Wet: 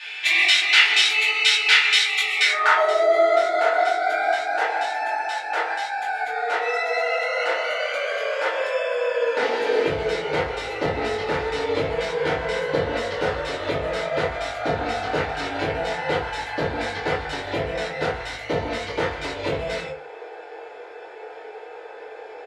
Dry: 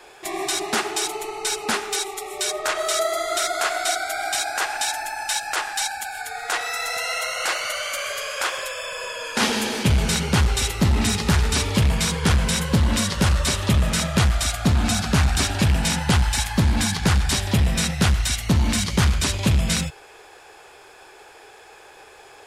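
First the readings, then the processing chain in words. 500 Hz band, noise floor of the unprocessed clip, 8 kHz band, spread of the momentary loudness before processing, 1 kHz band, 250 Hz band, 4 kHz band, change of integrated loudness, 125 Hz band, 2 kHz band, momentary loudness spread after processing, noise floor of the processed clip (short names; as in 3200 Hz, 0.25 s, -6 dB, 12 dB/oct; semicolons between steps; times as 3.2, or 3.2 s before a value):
+7.5 dB, -47 dBFS, -12.0 dB, 6 LU, +3.0 dB, -9.5 dB, +1.5 dB, +0.5 dB, -15.0 dB, +5.0 dB, 19 LU, -39 dBFS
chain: graphic EQ 125/250/1000/2000/4000 Hz -5/-10/-5/+7/+8 dB; compressor, threshold -20 dBFS, peak gain reduction 8 dB; band-pass sweep 2700 Hz -> 530 Hz, 2.35–2.94; doubler 21 ms -4 dB; FDN reverb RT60 0.45 s, low-frequency decay 0.8×, high-frequency decay 0.45×, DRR -8.5 dB; gain +6 dB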